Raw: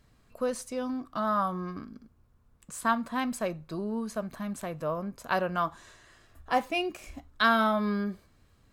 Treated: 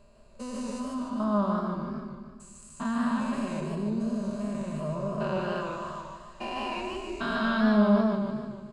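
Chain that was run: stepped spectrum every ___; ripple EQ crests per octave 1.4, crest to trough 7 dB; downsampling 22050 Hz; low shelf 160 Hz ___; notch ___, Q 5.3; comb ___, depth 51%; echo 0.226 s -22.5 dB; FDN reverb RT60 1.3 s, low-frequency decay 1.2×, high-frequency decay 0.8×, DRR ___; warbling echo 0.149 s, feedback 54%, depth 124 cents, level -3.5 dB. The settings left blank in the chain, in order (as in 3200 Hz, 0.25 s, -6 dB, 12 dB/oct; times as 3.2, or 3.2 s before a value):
0.4 s, +4 dB, 1700 Hz, 5 ms, 18.5 dB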